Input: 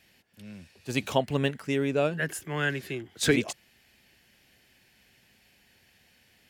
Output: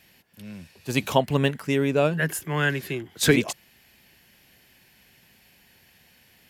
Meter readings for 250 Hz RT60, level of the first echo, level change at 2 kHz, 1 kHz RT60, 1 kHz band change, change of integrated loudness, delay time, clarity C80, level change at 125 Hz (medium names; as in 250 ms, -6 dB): no reverb, no echo, +4.0 dB, no reverb, +5.5 dB, +4.5 dB, no echo, no reverb, +6.0 dB